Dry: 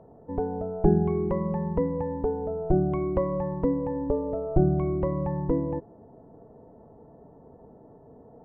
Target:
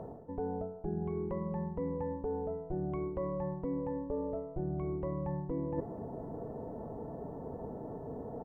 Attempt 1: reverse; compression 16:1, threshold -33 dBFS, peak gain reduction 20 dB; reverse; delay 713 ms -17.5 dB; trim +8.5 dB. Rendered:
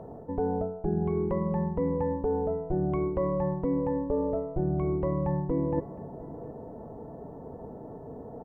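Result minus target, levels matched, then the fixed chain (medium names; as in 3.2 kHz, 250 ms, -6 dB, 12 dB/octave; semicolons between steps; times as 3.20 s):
compression: peak gain reduction -8 dB
reverse; compression 16:1, threshold -41.5 dBFS, peak gain reduction 28 dB; reverse; delay 713 ms -17.5 dB; trim +8.5 dB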